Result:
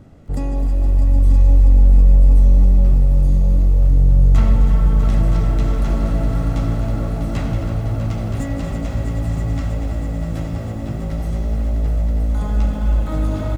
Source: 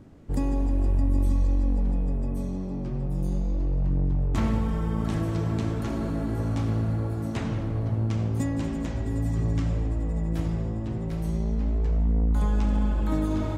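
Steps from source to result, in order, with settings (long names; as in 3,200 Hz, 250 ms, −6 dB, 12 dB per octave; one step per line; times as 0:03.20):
phase distortion by the signal itself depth 0.093 ms
comb filter 1.5 ms, depth 35%
in parallel at −2 dB: brickwall limiter −23.5 dBFS, peak gain reduction 11 dB
on the sum: echo machine with several playback heads 324 ms, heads all three, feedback 70%, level −11.5 dB
feedback echo at a low word length 258 ms, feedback 55%, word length 7 bits, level −13 dB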